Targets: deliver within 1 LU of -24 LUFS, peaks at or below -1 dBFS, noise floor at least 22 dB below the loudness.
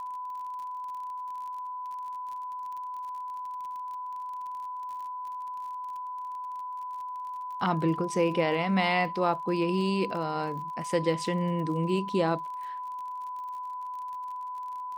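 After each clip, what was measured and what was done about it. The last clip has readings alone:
ticks 38/s; steady tone 1000 Hz; tone level -34 dBFS; loudness -31.5 LUFS; peak -11.0 dBFS; loudness target -24.0 LUFS
-> de-click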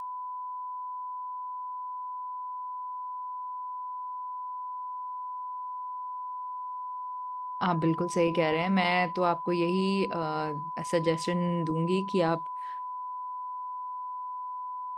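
ticks 0.067/s; steady tone 1000 Hz; tone level -34 dBFS
-> notch 1000 Hz, Q 30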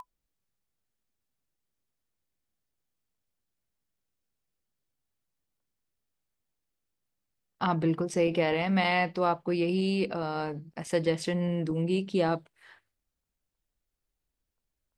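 steady tone none; loudness -28.5 LUFS; peak -11.5 dBFS; loudness target -24.0 LUFS
-> gain +4.5 dB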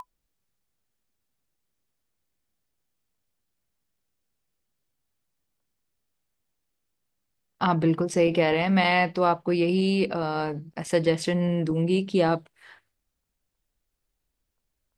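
loudness -24.0 LUFS; peak -7.0 dBFS; noise floor -80 dBFS

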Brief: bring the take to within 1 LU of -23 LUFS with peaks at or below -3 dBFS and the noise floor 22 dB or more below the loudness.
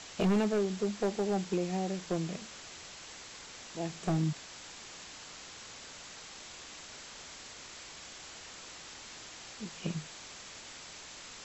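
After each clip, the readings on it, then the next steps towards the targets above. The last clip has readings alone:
clipped 0.8%; flat tops at -23.5 dBFS; noise floor -49 dBFS; noise floor target -60 dBFS; loudness -37.5 LUFS; peak -23.5 dBFS; loudness target -23.0 LUFS
-> clip repair -23.5 dBFS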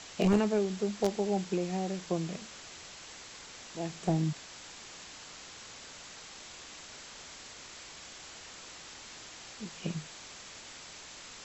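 clipped 0.0%; noise floor -49 dBFS; noise floor target -59 dBFS
-> denoiser 10 dB, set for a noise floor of -49 dBFS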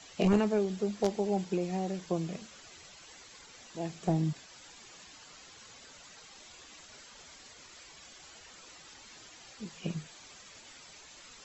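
noise floor -54 dBFS; noise floor target -55 dBFS
-> denoiser 6 dB, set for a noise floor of -54 dBFS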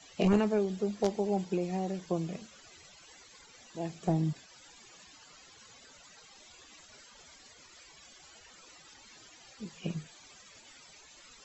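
noise floor -57 dBFS; loudness -32.5 LUFS; peak -14.5 dBFS; loudness target -23.0 LUFS
-> gain +9.5 dB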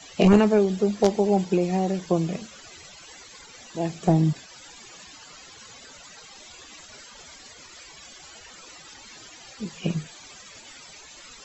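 loudness -23.0 LUFS; peak -5.0 dBFS; noise floor -47 dBFS

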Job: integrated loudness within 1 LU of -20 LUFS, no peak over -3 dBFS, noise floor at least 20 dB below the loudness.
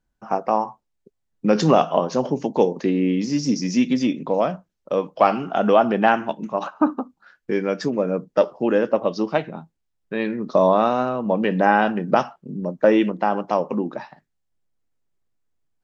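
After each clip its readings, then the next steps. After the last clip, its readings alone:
loudness -21.0 LUFS; peak -2.5 dBFS; loudness target -20.0 LUFS
-> gain +1 dB; limiter -3 dBFS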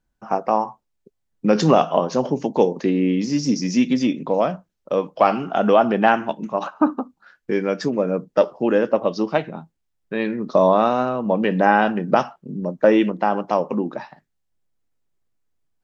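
loudness -20.0 LUFS; peak -3.0 dBFS; noise floor -74 dBFS

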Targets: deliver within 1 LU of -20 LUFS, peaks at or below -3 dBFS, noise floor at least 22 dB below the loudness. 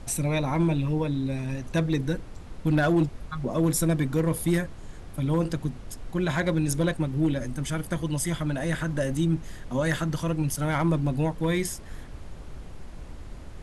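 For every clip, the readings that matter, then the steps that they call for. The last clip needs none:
clipped 0.4%; flat tops at -16.0 dBFS; noise floor -41 dBFS; noise floor target -49 dBFS; loudness -27.0 LUFS; peak -16.0 dBFS; loudness target -20.0 LUFS
-> clip repair -16 dBFS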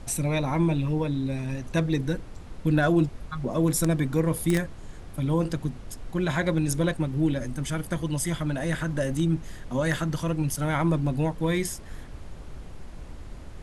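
clipped 0.0%; noise floor -41 dBFS; noise floor target -49 dBFS
-> noise print and reduce 8 dB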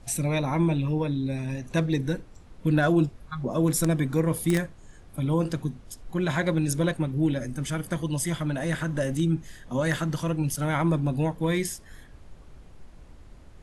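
noise floor -49 dBFS; loudness -27.0 LUFS; peak -7.0 dBFS; loudness target -20.0 LUFS
-> gain +7 dB; limiter -3 dBFS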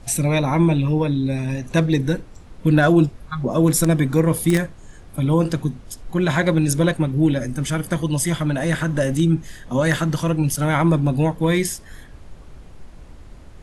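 loudness -20.0 LUFS; peak -3.0 dBFS; noise floor -42 dBFS

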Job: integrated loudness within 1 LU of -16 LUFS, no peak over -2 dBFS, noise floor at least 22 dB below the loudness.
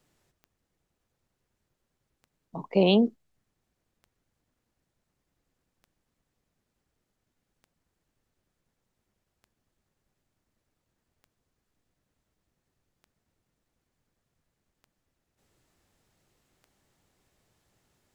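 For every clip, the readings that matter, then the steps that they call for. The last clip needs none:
clicks 10; loudness -24.0 LUFS; peak -10.5 dBFS; loudness target -16.0 LUFS
-> de-click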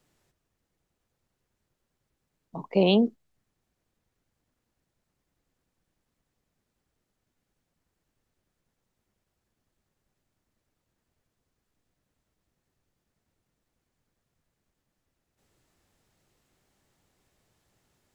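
clicks 0; loudness -24.0 LUFS; peak -10.5 dBFS; loudness target -16.0 LUFS
-> gain +8 dB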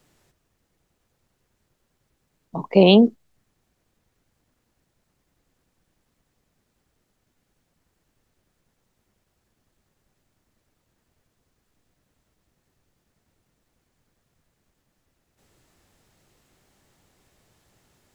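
loudness -16.0 LUFS; peak -2.5 dBFS; noise floor -75 dBFS

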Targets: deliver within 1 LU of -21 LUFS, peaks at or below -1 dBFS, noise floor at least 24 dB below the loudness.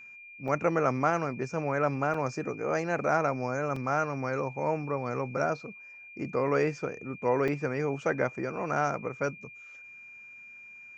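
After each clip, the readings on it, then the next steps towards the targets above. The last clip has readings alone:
dropouts 4; longest dropout 3.5 ms; steady tone 2400 Hz; tone level -46 dBFS; loudness -30.0 LUFS; peak -11.0 dBFS; loudness target -21.0 LUFS
-> interpolate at 0.48/2.14/3.76/7.48, 3.5 ms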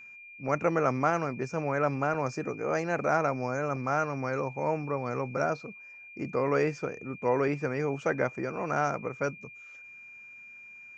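dropouts 0; steady tone 2400 Hz; tone level -46 dBFS
-> notch 2400 Hz, Q 30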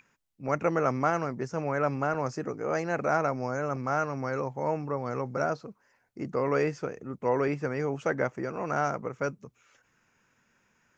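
steady tone none; loudness -30.5 LUFS; peak -11.5 dBFS; loudness target -21.0 LUFS
-> gain +9.5 dB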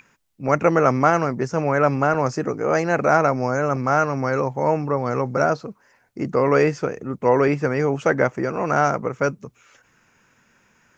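loudness -21.0 LUFS; peak -2.0 dBFS; noise floor -62 dBFS

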